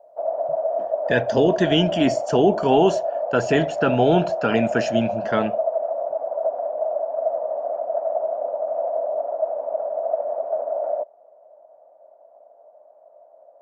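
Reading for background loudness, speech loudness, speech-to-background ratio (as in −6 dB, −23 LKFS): −25.5 LKFS, −21.0 LKFS, 4.5 dB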